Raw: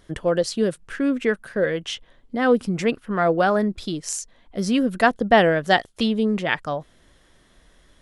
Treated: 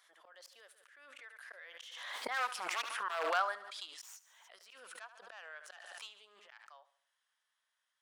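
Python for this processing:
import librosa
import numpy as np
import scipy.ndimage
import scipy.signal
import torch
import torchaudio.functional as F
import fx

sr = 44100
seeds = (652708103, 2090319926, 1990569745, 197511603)

p1 = fx.tracing_dist(x, sr, depth_ms=0.071)
p2 = fx.doppler_pass(p1, sr, speed_mps=12, closest_m=2.8, pass_at_s=2.74)
p3 = 10.0 ** (-19.5 / 20.0) * (np.abs((p2 / 10.0 ** (-19.5 / 20.0) + 3.0) % 4.0 - 2.0) - 1.0)
p4 = scipy.signal.sosfilt(scipy.signal.butter(4, 890.0, 'highpass', fs=sr, output='sos'), p3)
p5 = fx.auto_swell(p4, sr, attack_ms=351.0)
p6 = p5 + fx.echo_feedback(p5, sr, ms=72, feedback_pct=47, wet_db=-16.5, dry=0)
p7 = fx.pre_swell(p6, sr, db_per_s=34.0)
y = F.gain(torch.from_numpy(p7), 3.0).numpy()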